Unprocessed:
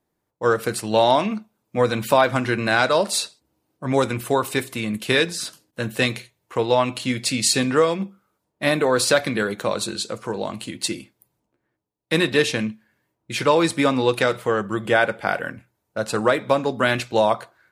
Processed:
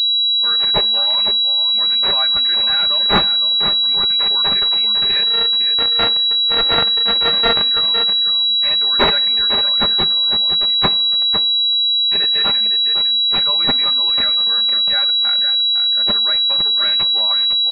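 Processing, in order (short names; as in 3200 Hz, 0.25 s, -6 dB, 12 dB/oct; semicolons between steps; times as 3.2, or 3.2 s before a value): 5.26–7.62 sample sorter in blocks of 32 samples; bell 420 Hz -14 dB 2.3 oct; comb 5 ms, depth 75%; echo 0.506 s -8.5 dB; reverb removal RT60 0.67 s; tilt +4.5 dB/oct; two-slope reverb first 0.49 s, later 4.3 s, from -18 dB, DRR 15 dB; pulse-width modulation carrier 3900 Hz; gain -3.5 dB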